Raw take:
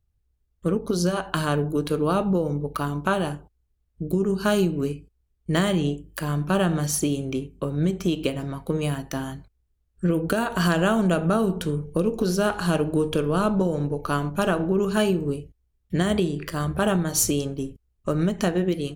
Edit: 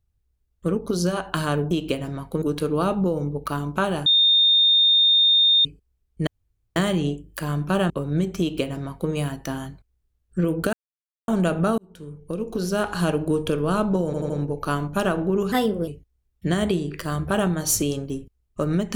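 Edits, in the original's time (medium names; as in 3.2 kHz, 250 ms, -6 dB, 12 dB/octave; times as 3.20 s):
3.35–4.94 s: bleep 3.65 kHz -13.5 dBFS
5.56 s: insert room tone 0.49 s
6.70–7.56 s: delete
8.06–8.77 s: copy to 1.71 s
10.39–10.94 s: mute
11.44–12.59 s: fade in
13.72 s: stutter 0.08 s, 4 plays
14.94–15.36 s: speed 118%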